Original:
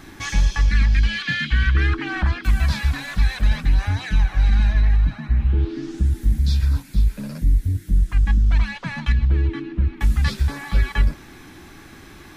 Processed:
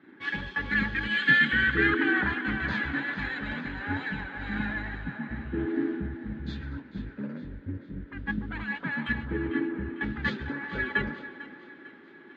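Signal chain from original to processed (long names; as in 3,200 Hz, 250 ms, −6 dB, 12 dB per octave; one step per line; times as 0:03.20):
spectral magnitudes quantised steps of 15 dB
parametric band 1,600 Hz −3 dB 0.22 octaves
feedback echo with a high-pass in the loop 449 ms, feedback 66%, high-pass 400 Hz, level −10 dB
bad sample-rate conversion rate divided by 4×, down filtered, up hold
loudspeaker in its box 220–3,100 Hz, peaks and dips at 250 Hz +5 dB, 400 Hz +4 dB, 690 Hz −10 dB, 1,100 Hz −6 dB, 1,600 Hz +7 dB, 2,500 Hz −7 dB
delay with a band-pass on its return 146 ms, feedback 85%, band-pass 590 Hz, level −10 dB
multiband upward and downward expander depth 70%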